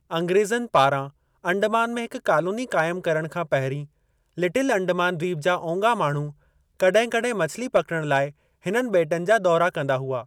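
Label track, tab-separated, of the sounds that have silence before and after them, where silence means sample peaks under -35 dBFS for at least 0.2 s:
1.450000	3.850000	sound
4.380000	6.310000	sound
6.800000	8.300000	sound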